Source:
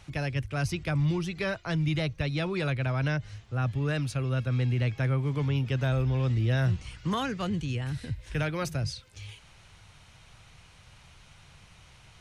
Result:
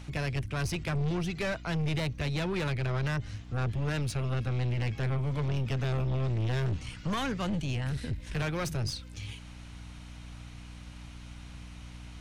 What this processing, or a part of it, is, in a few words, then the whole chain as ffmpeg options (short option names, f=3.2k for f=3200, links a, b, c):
valve amplifier with mains hum: -af "aeval=exprs='(tanh(35.5*val(0)+0.35)-tanh(0.35))/35.5':c=same,aeval=exprs='val(0)+0.00398*(sin(2*PI*60*n/s)+sin(2*PI*2*60*n/s)/2+sin(2*PI*3*60*n/s)/3+sin(2*PI*4*60*n/s)/4+sin(2*PI*5*60*n/s)/5)':c=same,volume=3.5dB"